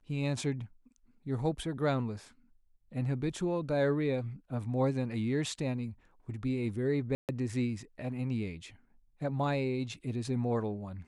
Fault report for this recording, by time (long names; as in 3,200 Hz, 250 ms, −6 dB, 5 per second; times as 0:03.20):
0:07.15–0:07.29: drop-out 138 ms